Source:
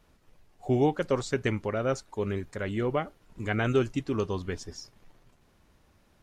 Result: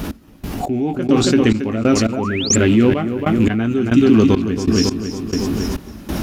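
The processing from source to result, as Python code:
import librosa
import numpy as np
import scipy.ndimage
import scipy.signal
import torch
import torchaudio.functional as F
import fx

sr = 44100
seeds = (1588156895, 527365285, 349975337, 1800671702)

y = fx.rattle_buzz(x, sr, strikes_db=-33.0, level_db=-34.0)
y = scipy.signal.sosfilt(scipy.signal.butter(2, 47.0, 'highpass', fs=sr, output='sos'), y)
y = fx.doubler(y, sr, ms=18.0, db=-9)
y = fx.echo_feedback(y, sr, ms=276, feedback_pct=43, wet_db=-8.0)
y = fx.spec_paint(y, sr, seeds[0], shape='rise', start_s=2.16, length_s=0.4, low_hz=600.0, high_hz=7900.0, level_db=-29.0)
y = fx.step_gate(y, sr, bpm=138, pattern='x...xx....xxx', floor_db=-24.0, edge_ms=4.5)
y = fx.dynamic_eq(y, sr, hz=3600.0, q=0.83, threshold_db=-48.0, ratio=4.0, max_db=5)
y = fx.rider(y, sr, range_db=5, speed_s=2.0)
y = fx.graphic_eq_10(y, sr, hz=(125, 250, 500, 1000, 2000, 4000, 8000), db=(-7, 9, -8, -6, -7, -5, -8))
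y = fx.env_flatten(y, sr, amount_pct=70)
y = y * librosa.db_to_amplitude(8.0)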